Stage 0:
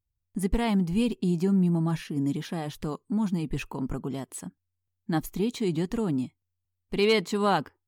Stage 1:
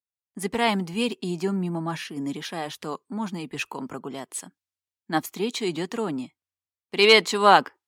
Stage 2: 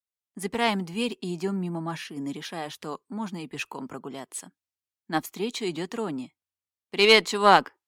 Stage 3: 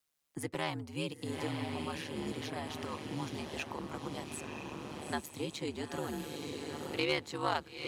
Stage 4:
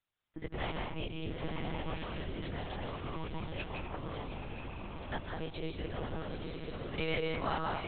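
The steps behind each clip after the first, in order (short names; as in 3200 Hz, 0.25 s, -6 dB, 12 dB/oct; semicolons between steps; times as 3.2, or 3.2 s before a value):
weighting filter A; three-band expander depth 40%; gain +7 dB
added harmonics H 2 -21 dB, 7 -34 dB, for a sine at -1 dBFS; gain -1.5 dB
diffused feedback echo 0.911 s, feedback 50%, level -7 dB; ring modulator 74 Hz; three-band squash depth 70%; gain -6.5 dB
on a send at -1 dB: reverb RT60 0.75 s, pre-delay 0.144 s; on the sum: monotone LPC vocoder at 8 kHz 160 Hz; gain -2 dB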